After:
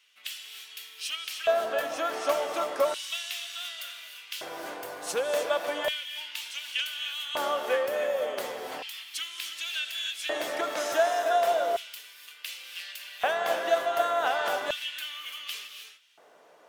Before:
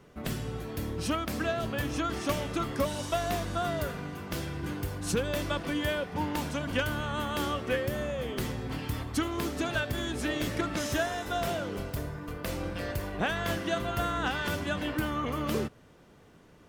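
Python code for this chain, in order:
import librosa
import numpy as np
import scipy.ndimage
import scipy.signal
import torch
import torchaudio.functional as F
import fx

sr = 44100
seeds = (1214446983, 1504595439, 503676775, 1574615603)

y = fx.rev_gated(x, sr, seeds[0], gate_ms=330, shape='rising', drr_db=6.0)
y = fx.filter_lfo_highpass(y, sr, shape='square', hz=0.34, low_hz=630.0, high_hz=2900.0, q=2.5)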